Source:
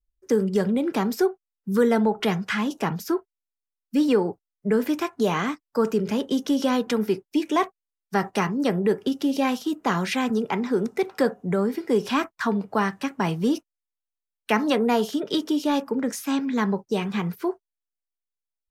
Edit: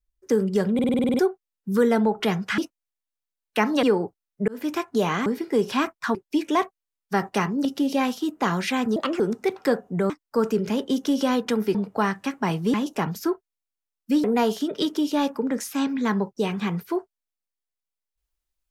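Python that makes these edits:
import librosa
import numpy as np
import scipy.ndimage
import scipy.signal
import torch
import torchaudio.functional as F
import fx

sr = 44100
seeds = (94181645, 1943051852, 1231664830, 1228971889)

y = fx.edit(x, sr, fx.stutter_over(start_s=0.74, slice_s=0.05, count=9),
    fx.swap(start_s=2.58, length_s=1.5, other_s=13.51, other_length_s=1.25),
    fx.fade_in_span(start_s=4.73, length_s=0.26),
    fx.swap(start_s=5.51, length_s=1.65, other_s=11.63, other_length_s=0.89),
    fx.cut(start_s=8.66, length_s=0.43),
    fx.speed_span(start_s=10.4, length_s=0.33, speed=1.39), tone=tone)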